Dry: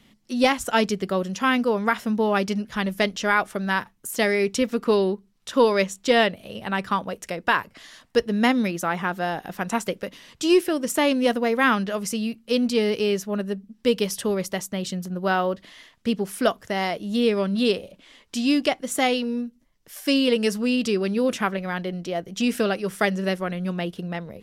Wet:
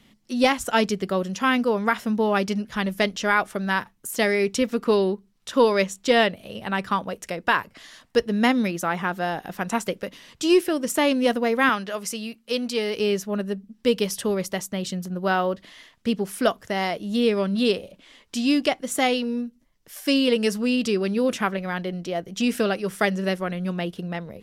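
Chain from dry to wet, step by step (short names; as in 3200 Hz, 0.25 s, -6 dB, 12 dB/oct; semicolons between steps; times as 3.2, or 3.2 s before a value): 11.69–12.96 low shelf 290 Hz -11.5 dB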